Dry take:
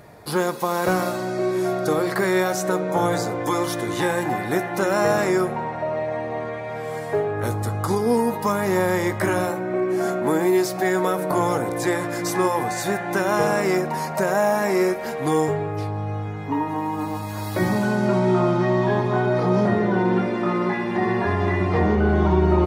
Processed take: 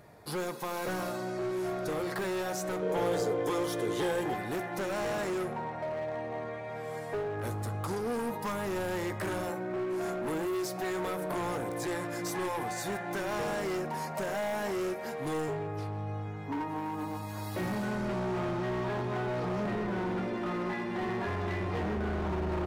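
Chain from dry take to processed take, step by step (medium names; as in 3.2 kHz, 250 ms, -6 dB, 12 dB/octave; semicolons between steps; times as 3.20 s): overload inside the chain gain 21 dB; 2.82–4.34 s: small resonant body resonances 440/3200 Hz, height 14 dB, ringing for 45 ms; trim -9 dB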